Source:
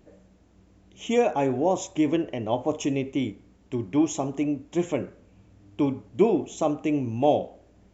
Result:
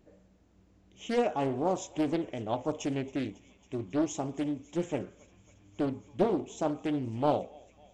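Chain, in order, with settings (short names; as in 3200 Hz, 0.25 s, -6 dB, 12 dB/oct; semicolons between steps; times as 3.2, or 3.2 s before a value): thinning echo 0.275 s, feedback 85%, high-pass 910 Hz, level -21 dB; Doppler distortion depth 0.69 ms; gain -6 dB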